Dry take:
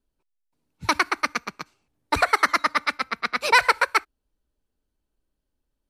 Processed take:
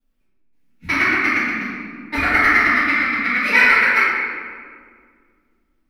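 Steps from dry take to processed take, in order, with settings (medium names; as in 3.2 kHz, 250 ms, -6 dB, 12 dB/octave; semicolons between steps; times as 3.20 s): graphic EQ 125/250/500/1000/2000/4000/8000 Hz -6/+10/-8/-10/+11/-5/-11 dB; companded quantiser 8-bit; reverberation RT60 2.0 s, pre-delay 4 ms, DRR -16 dB; trim -10.5 dB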